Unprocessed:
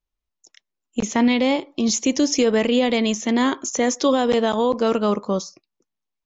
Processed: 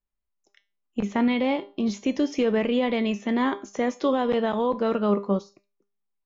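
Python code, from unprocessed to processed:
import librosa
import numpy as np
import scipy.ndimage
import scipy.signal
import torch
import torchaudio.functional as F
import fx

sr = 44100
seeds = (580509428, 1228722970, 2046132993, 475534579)

y = scipy.signal.sosfilt(scipy.signal.butter(2, 2500.0, 'lowpass', fs=sr, output='sos'), x)
y = fx.comb_fb(y, sr, f0_hz=200.0, decay_s=0.31, harmonics='all', damping=0.0, mix_pct=70)
y = y * librosa.db_to_amplitude(4.5)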